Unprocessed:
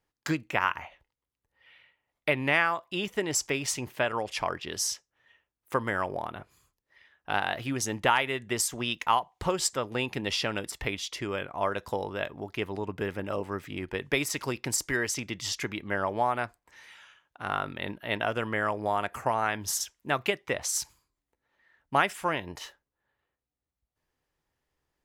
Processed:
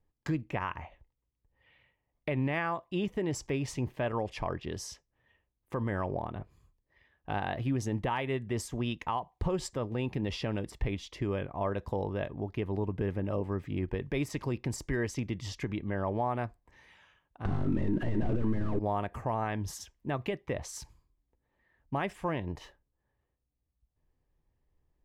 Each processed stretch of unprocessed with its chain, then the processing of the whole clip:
17.45–18.79 CVSD 64 kbps + overdrive pedal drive 36 dB, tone 1400 Hz, clips at -15 dBFS + resonant low shelf 450 Hz +9.5 dB, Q 1.5
whole clip: tilt -3.5 dB/oct; notch 1400 Hz, Q 7.3; limiter -17.5 dBFS; gain -4 dB

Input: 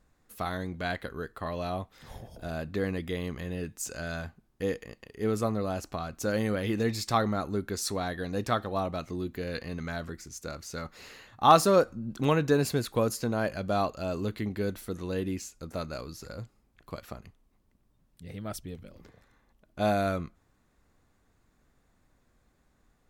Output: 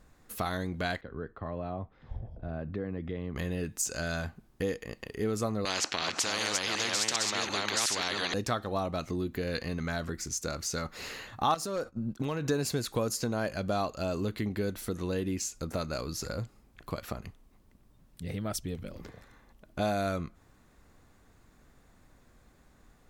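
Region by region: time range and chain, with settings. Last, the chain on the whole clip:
1.01–3.36 compressor 2.5:1, threshold -38 dBFS + tape spacing loss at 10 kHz 43 dB + three-band expander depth 100%
5.65–8.34 reverse delay 0.368 s, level -3 dB + BPF 480–3400 Hz + spectral compressor 4:1
11.54–12.49 expander -36 dBFS + overloaded stage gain 15.5 dB + compressor 5:1, threshold -29 dBFS
whole clip: dynamic EQ 6300 Hz, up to +6 dB, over -51 dBFS, Q 1; compressor 2.5:1, threshold -40 dBFS; gain +7.5 dB

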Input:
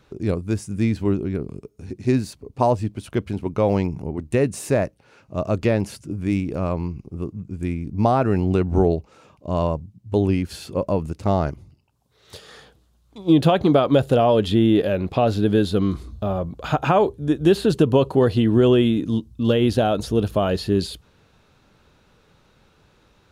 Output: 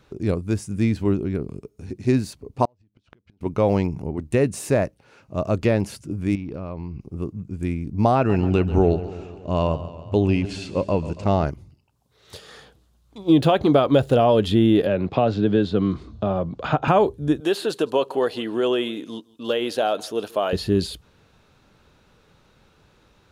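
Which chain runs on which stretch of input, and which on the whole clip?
2.65–3.41 LPF 5900 Hz 24 dB/oct + compressor 5:1, threshold -28 dBFS + flipped gate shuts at -26 dBFS, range -30 dB
6.35–7.01 polynomial smoothing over 15 samples + compressor 5:1, threshold -27 dBFS
8.15–11.45 LPF 8000 Hz 24 dB/oct + bell 2700 Hz +8 dB 0.27 oct + warbling echo 0.14 s, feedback 62%, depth 74 cents, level -14.5 dB
13.23–14.16 median filter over 3 samples + bell 180 Hz -8 dB 0.25 oct
14.86–16.88 HPF 100 Hz + air absorption 130 m + three-band squash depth 40%
17.4–20.53 HPF 470 Hz + echo 0.162 s -23.5 dB
whole clip: dry

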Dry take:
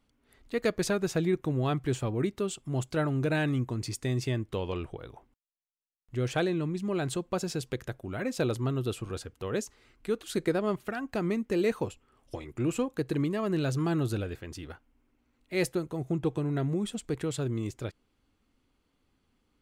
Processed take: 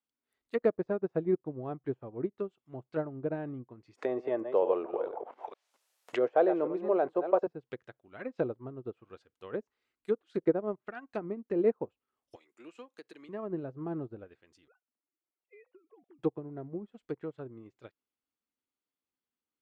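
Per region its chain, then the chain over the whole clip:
3.95–7.47 reverse delay 0.227 s, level -11 dB + resonant high-pass 550 Hz, resonance Q 1.6 + fast leveller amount 70%
12.36–13.29 HPF 200 Hz 24 dB/oct + tilt +2 dB/oct + compressor 2:1, threshold -34 dBFS
14.68–16.19 sine-wave speech + compressor 16:1, threshold -36 dBFS
whole clip: treble ducked by the level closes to 710 Hz, closed at -26 dBFS; HPF 430 Hz 6 dB/oct; upward expander 2.5:1, over -45 dBFS; gain +8 dB

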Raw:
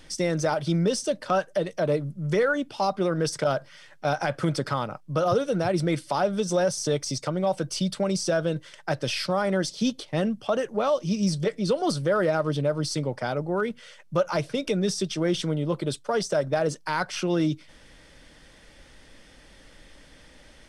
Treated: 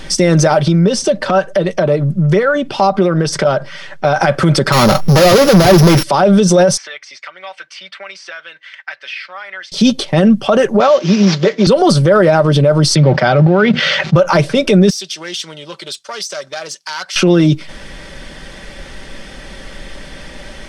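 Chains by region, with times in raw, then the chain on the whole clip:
0.6–4.16 high shelf 8600 Hz -10 dB + compressor 4:1, threshold -30 dBFS
4.72–6.03 sample sorter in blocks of 8 samples + compressor 2:1, threshold -40 dBFS + sample leveller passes 5
6.77–9.72 ladder band-pass 2400 Hz, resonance 45% + high shelf 3400 Hz -8 dB + three-band squash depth 70%
10.8–11.67 CVSD 32 kbps + HPF 250 Hz
12.95–14.16 G.711 law mismatch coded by A + speaker cabinet 100–5000 Hz, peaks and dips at 150 Hz +5 dB, 250 Hz -4 dB, 430 Hz -6 dB, 1000 Hz -6 dB + fast leveller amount 70%
14.9–17.16 self-modulated delay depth 0.069 ms + band-pass 5400 Hz, Q 0.98 + compressor 1.5:1, threshold -45 dBFS
whole clip: high shelf 6100 Hz -6.5 dB; comb 5.2 ms, depth 38%; maximiser +20.5 dB; gain -1 dB

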